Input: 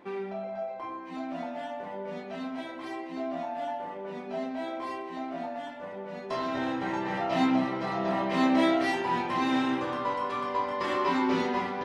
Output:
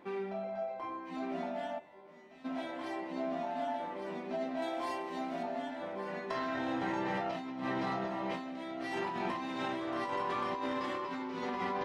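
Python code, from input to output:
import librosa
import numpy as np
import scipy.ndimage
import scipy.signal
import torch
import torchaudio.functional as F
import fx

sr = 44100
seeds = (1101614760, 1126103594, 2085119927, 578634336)

y = fx.peak_eq(x, sr, hz=1700.0, db=8.0, octaves=0.75, at=(5.99, 6.59))
y = y + 10.0 ** (-7.5 / 20.0) * np.pad(y, (int(1157 * sr / 1000.0), 0))[:len(y)]
y = fx.over_compress(y, sr, threshold_db=-31.0, ratio=-1.0)
y = fx.comb_fb(y, sr, f0_hz=76.0, decay_s=0.56, harmonics='all', damping=0.0, mix_pct=100, at=(1.78, 2.44), fade=0.02)
y = fx.high_shelf(y, sr, hz=5000.0, db=10.5, at=(4.62, 5.43))
y = y * librosa.db_to_amplitude(-5.0)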